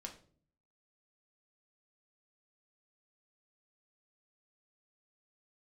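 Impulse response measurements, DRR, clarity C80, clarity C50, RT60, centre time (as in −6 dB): 2.0 dB, 15.5 dB, 11.0 dB, 0.50 s, 14 ms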